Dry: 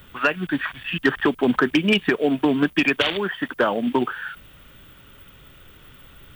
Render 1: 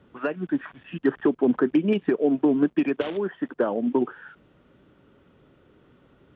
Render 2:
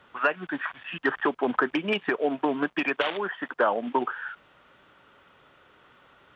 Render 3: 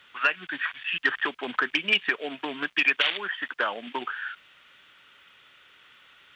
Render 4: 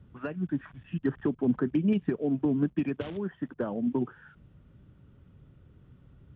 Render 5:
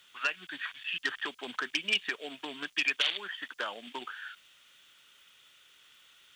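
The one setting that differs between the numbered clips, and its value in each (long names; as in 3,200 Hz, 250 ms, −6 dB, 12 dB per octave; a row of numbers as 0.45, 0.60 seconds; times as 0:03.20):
resonant band-pass, frequency: 340, 880, 2,300, 120, 5,900 Hertz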